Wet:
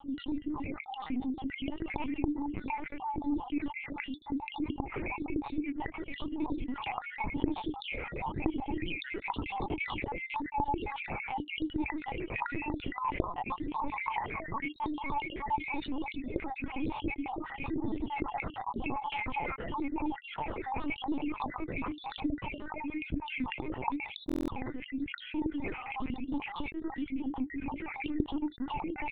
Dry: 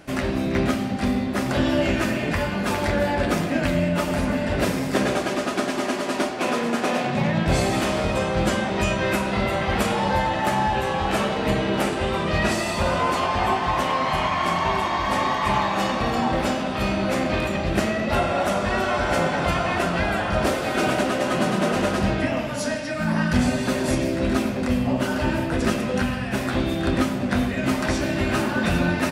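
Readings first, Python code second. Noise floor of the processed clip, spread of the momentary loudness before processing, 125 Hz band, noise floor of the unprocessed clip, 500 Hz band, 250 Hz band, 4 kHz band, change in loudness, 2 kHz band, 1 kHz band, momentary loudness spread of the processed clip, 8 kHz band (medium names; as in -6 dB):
-49 dBFS, 3 LU, -18.5 dB, -27 dBFS, -19.5 dB, -11.5 dB, -16.5 dB, -13.5 dB, -13.5 dB, -12.0 dB, 4 LU, under -40 dB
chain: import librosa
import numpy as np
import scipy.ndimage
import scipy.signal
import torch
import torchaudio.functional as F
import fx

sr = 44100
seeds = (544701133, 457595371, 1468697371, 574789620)

y = fx.spec_dropout(x, sr, seeds[0], share_pct=63)
y = fx.highpass(y, sr, hz=43.0, slope=6)
y = fx.phaser_stages(y, sr, stages=6, low_hz=230.0, high_hz=2100.0, hz=0.96, feedback_pct=45)
y = fx.vowel_filter(y, sr, vowel='u')
y = fx.low_shelf(y, sr, hz=450.0, db=-2.0)
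y = fx.lpc_vocoder(y, sr, seeds[1], excitation='pitch_kept', order=10)
y = fx.rider(y, sr, range_db=4, speed_s=2.0)
y = fx.dynamic_eq(y, sr, hz=200.0, q=1.3, threshold_db=-48.0, ratio=4.0, max_db=-5)
y = fx.buffer_glitch(y, sr, at_s=(24.27,), block=1024, repeats=8)
y = fx.env_flatten(y, sr, amount_pct=50)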